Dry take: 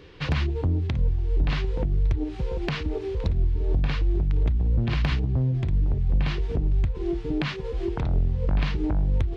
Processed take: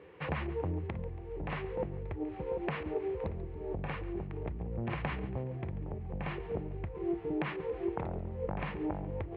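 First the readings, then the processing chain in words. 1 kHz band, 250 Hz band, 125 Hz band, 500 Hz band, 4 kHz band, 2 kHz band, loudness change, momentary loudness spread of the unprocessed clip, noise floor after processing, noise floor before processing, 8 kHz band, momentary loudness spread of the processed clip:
−2.0 dB, −7.5 dB, −14.0 dB, −3.0 dB, −16.0 dB, −7.0 dB, −11.5 dB, 4 LU, −43 dBFS, −33 dBFS, can't be measured, 4 LU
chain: loudspeaker in its box 130–2,300 Hz, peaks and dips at 130 Hz −9 dB, 260 Hz −9 dB, 520 Hz +4 dB, 820 Hz +4 dB, 1,500 Hz −4 dB
on a send: echo with a time of its own for lows and highs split 500 Hz, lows 193 ms, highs 140 ms, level −16 dB
on the sum: level −4 dB

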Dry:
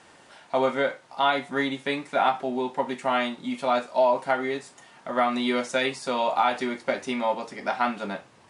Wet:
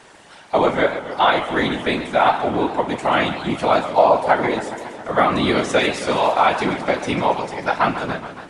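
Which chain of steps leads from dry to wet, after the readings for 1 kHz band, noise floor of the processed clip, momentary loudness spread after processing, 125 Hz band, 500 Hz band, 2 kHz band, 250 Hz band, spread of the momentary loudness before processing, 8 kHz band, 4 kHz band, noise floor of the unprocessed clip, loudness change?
+7.5 dB, −44 dBFS, 7 LU, +15.0 dB, +7.0 dB, +7.0 dB, +7.0 dB, 7 LU, +7.0 dB, +7.0 dB, −54 dBFS, +7.0 dB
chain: random phases in short frames
feedback echo with a swinging delay time 139 ms, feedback 70%, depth 216 cents, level −12 dB
level +6.5 dB

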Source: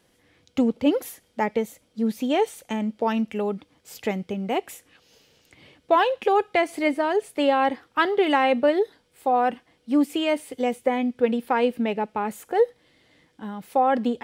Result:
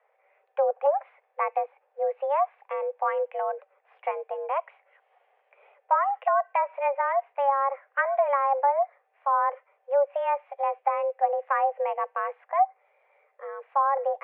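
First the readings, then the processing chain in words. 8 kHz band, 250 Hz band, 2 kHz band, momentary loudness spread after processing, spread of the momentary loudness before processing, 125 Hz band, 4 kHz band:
below −35 dB, below −40 dB, −5.0 dB, 9 LU, 9 LU, can't be measured, below −20 dB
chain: treble cut that deepens with the level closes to 970 Hz, closed at −15.5 dBFS
single-sideband voice off tune +280 Hz 180–2,000 Hz
level −2.5 dB

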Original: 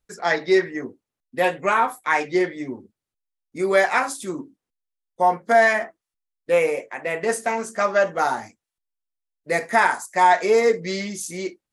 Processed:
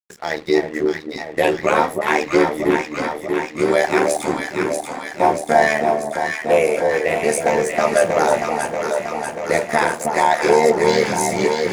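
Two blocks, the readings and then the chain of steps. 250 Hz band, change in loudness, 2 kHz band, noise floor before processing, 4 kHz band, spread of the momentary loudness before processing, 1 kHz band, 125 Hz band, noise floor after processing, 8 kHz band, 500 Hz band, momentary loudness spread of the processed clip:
+7.0 dB, +2.5 dB, +1.5 dB, below −85 dBFS, +5.5 dB, 15 LU, +2.5 dB, +8.0 dB, −34 dBFS, +7.0 dB, +5.0 dB, 8 LU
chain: mains-hum notches 50/100/150/200/250/300 Hz
dynamic equaliser 1,300 Hz, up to −7 dB, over −32 dBFS, Q 0.91
in parallel at +2.5 dB: brickwall limiter −16.5 dBFS, peak gain reduction 8 dB
on the sum: automatic gain control
dead-zone distortion −34 dBFS
amplitude modulation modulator 76 Hz, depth 75%
on a send: delay that swaps between a low-pass and a high-pass 318 ms, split 970 Hz, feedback 82%, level −3 dB
on the sum: level −1.5 dB

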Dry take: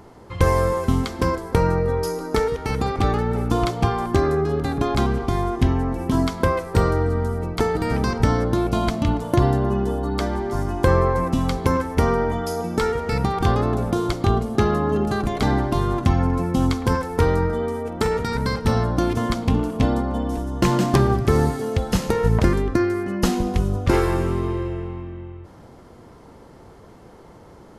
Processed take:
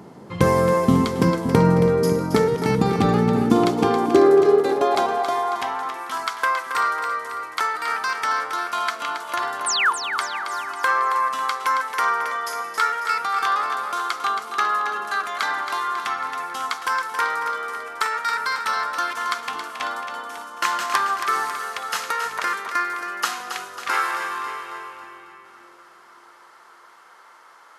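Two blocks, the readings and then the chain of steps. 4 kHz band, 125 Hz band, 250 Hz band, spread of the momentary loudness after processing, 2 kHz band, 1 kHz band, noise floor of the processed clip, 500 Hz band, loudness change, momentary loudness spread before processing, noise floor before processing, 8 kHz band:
+4.0 dB, −8.0 dB, −3.0 dB, 10 LU, +7.0 dB, +4.0 dB, −49 dBFS, −1.0 dB, −0.5 dB, 5 LU, −46 dBFS, +4.0 dB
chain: sound drawn into the spectrogram fall, 0:09.66–0:09.93, 840–10,000 Hz −24 dBFS
echo with a time of its own for lows and highs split 390 Hz, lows 569 ms, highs 273 ms, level −8 dB
high-pass filter sweep 170 Hz → 1,300 Hz, 0:03.23–0:06.11
level +1 dB

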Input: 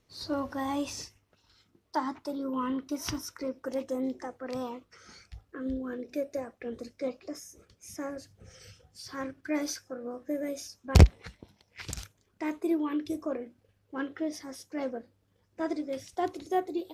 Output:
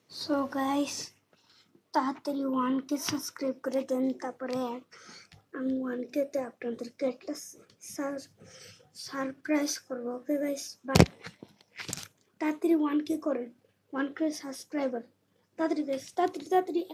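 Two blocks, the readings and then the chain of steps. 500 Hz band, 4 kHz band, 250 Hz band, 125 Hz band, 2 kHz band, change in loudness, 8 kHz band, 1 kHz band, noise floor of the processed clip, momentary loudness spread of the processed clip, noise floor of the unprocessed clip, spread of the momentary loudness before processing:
+3.0 dB, +3.0 dB, +3.0 dB, −5.5 dB, +3.0 dB, +1.0 dB, +3.0 dB, +3.0 dB, −71 dBFS, 18 LU, −71 dBFS, 18 LU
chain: high-pass filter 130 Hz 24 dB per octave
level +3 dB

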